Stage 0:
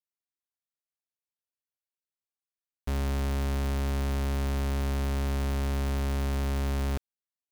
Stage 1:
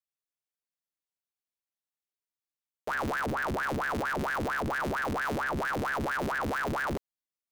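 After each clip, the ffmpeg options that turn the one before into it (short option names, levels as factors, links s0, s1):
-af "aeval=exprs='val(0)*sin(2*PI*900*n/s+900*0.85/4.4*sin(2*PI*4.4*n/s))':c=same"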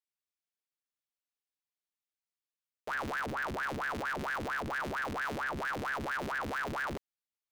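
-af "equalizer=f=2700:w=0.44:g=5,volume=0.447"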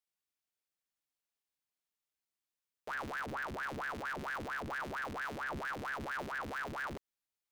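-af "alimiter=level_in=3.98:limit=0.0631:level=0:latency=1:release=128,volume=0.251,volume=1.12"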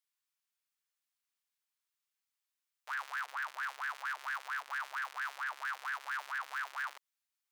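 -af "highpass=f=950:w=0.5412,highpass=f=950:w=1.3066,volume=1.26"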